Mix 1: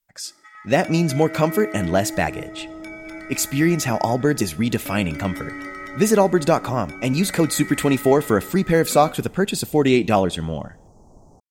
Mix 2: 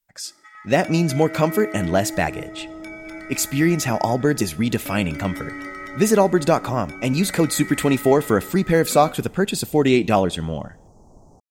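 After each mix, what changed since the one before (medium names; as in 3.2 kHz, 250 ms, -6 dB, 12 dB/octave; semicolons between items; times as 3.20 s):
no change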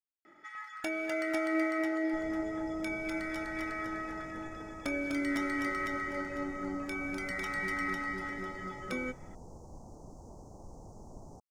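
speech: muted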